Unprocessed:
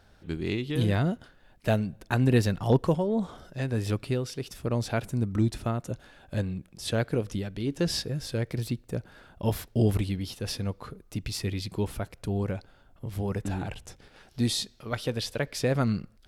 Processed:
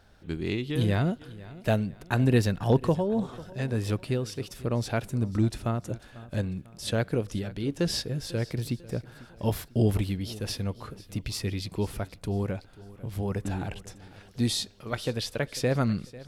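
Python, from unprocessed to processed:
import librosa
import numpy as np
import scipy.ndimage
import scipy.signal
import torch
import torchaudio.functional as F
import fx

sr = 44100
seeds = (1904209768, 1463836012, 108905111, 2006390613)

y = fx.echo_feedback(x, sr, ms=496, feedback_pct=43, wet_db=-19.0)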